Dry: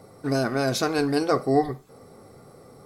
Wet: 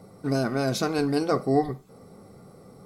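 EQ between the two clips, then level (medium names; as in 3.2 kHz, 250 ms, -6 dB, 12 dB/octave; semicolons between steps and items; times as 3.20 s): peaking EQ 190 Hz +9 dB 0.28 oct; bass shelf 340 Hz +3 dB; band-stop 1.7 kHz, Q 11; -3.0 dB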